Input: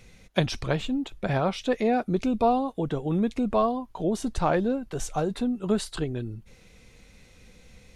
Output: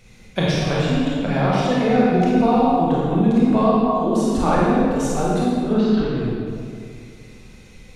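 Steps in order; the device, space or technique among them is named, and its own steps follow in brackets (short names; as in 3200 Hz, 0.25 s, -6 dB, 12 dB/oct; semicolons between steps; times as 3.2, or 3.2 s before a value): 5.51–6.18 Bessel low-pass 3100 Hz, order 8; tunnel (flutter echo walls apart 8.9 m, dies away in 0.32 s; reverb RT60 2.3 s, pre-delay 23 ms, DRR -6.5 dB)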